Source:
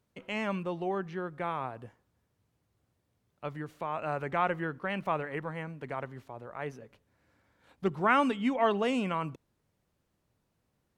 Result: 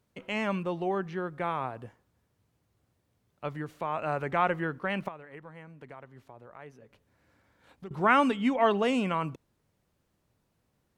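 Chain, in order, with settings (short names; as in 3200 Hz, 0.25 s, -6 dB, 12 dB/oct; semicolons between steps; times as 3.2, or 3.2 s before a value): 5.08–7.91 compressor 2.5:1, threshold -52 dBFS, peak gain reduction 18.5 dB; gain +2.5 dB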